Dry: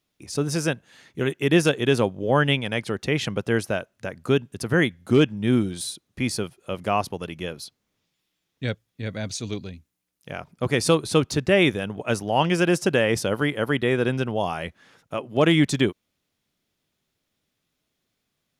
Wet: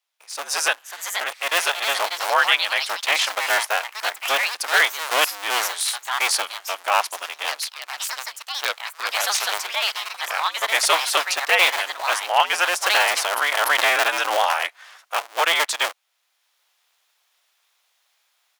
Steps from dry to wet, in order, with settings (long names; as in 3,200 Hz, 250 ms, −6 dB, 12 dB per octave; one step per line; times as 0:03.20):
sub-harmonics by changed cycles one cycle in 2, inverted
high-pass filter 760 Hz 24 dB per octave
automatic gain control gain up to 14 dB
delay with pitch and tempo change per echo 622 ms, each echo +4 semitones, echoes 2, each echo −6 dB
0:12.89–0:14.53: background raised ahead of every attack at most 51 dB per second
level −2 dB